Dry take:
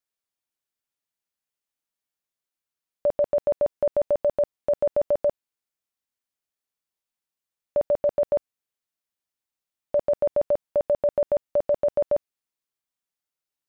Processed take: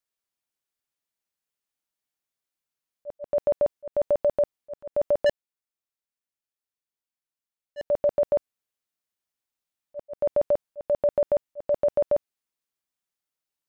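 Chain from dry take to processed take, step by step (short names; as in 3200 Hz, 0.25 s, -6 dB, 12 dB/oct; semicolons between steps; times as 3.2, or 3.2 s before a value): 5.26–7.86 sample leveller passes 3; auto swell 0.202 s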